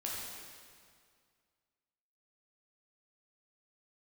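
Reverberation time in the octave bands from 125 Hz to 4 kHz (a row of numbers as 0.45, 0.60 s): 2.2, 2.1, 2.1, 2.1, 1.9, 1.8 s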